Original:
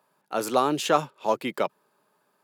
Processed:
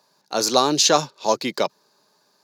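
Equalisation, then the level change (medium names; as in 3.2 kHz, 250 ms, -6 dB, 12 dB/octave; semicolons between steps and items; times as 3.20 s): high-order bell 5.1 kHz +15 dB 1 oct; band-stop 1.3 kHz, Q 12; +4.0 dB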